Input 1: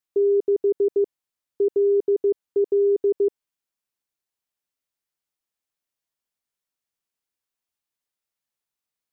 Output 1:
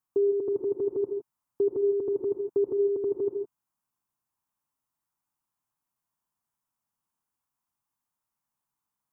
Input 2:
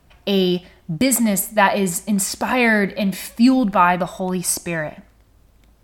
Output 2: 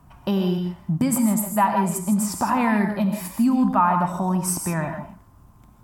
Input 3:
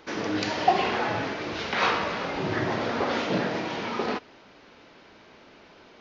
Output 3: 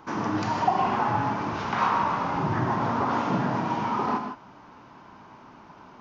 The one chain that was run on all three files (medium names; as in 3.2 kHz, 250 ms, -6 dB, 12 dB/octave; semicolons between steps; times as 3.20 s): graphic EQ 125/250/500/1000/2000/4000 Hz +8/+4/-8/+12/-6/-9 dB; compression 2:1, threshold -24 dBFS; gated-style reverb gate 180 ms rising, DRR 5.5 dB